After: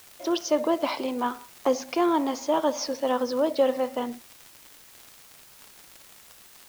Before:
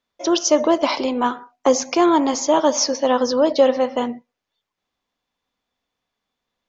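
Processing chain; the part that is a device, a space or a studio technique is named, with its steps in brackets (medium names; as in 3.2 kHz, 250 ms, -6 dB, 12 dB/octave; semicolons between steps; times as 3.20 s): 78 rpm shellac record (band-pass 100–4600 Hz; crackle 140 per s -27 dBFS; white noise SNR 24 dB); trim -7.5 dB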